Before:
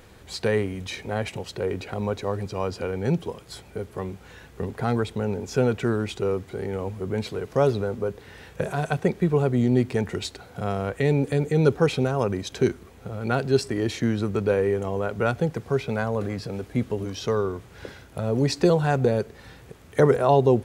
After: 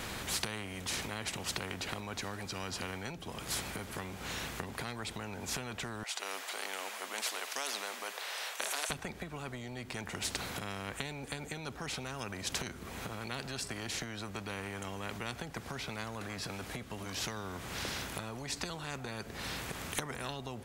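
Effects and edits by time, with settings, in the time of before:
6.03–8.90 s: elliptic high-pass 630 Hz, stop band 80 dB
whole clip: resonant low shelf 310 Hz +12.5 dB, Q 1.5; compression 6:1, threshold -27 dBFS; spectrum-flattening compressor 4:1; trim -1 dB

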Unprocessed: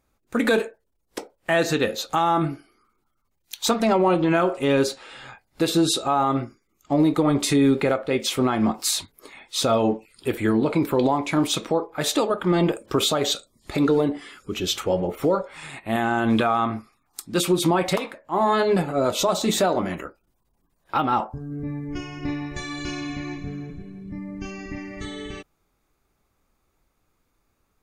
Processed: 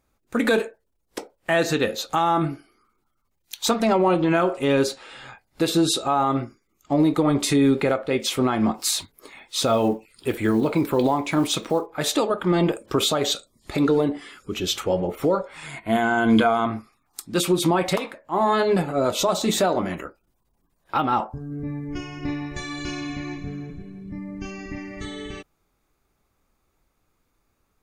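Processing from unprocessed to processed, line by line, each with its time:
8.77–11.86 s: block-companded coder 7-bit
15.66–16.66 s: rippled EQ curve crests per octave 1.8, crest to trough 11 dB

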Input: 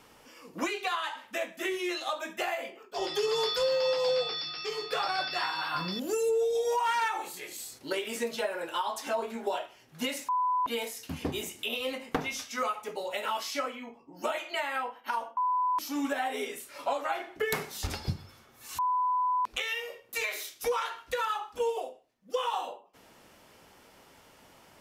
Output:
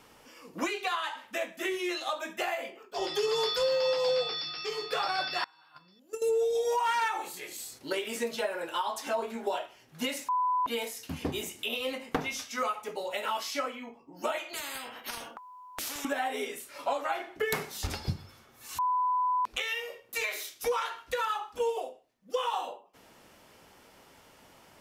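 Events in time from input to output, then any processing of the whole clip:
5.44–6.22 s: gate -28 dBFS, range -27 dB
14.53–16.05 s: spectrum-flattening compressor 4:1

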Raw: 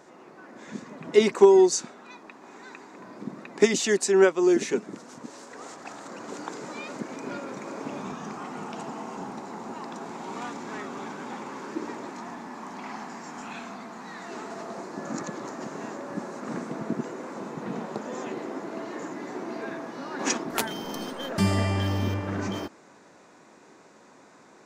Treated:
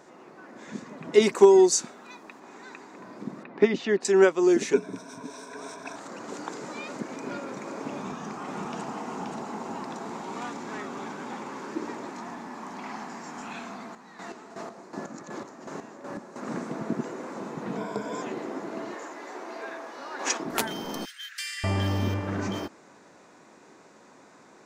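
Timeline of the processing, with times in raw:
1.22–2.40 s: treble shelf 9.2 kHz +10.5 dB
3.43–4.05 s: distance through air 320 m
4.73–5.96 s: rippled EQ curve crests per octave 1.6, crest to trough 13 dB
7.95–10.22 s: delay 528 ms -3.5 dB
13.82–16.36 s: square tremolo 2.7 Hz, depth 65%, duty 35%
17.77–18.22 s: rippled EQ curve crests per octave 1.7, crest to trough 13 dB
18.94–20.40 s: high-pass 490 Hz
21.05–21.64 s: steep high-pass 1.6 kHz 48 dB/octave

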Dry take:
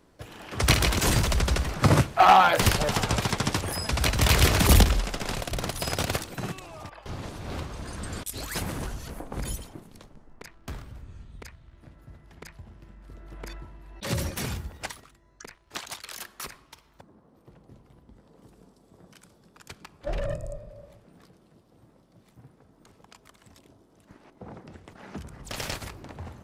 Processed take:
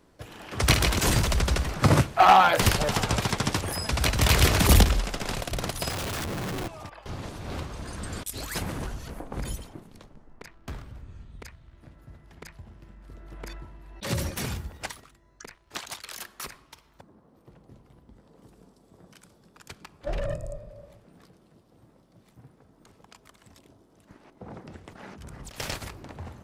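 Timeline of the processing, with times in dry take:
5.90–6.68 s: Schmitt trigger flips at -41 dBFS
8.58–11.40 s: treble shelf 5.7 kHz -5 dB
24.50–25.60 s: compressor with a negative ratio -42 dBFS

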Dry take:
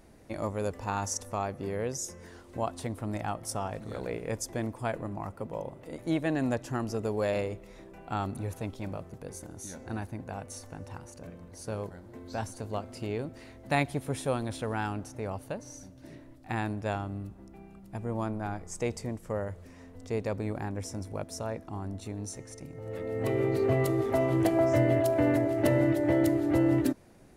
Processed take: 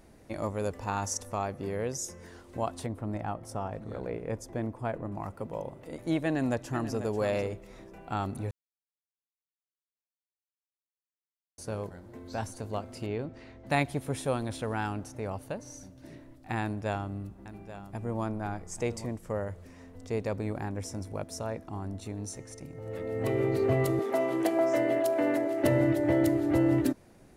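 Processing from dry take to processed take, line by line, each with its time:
2.86–5.12 s: treble shelf 2.4 kHz -12 dB
6.23–7.03 s: echo throw 490 ms, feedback 15%, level -11.5 dB
8.51–11.58 s: mute
13.06–13.67 s: distance through air 110 m
16.62–19.06 s: delay 834 ms -13 dB
23.99–25.64 s: Bessel high-pass 290 Hz, order 4

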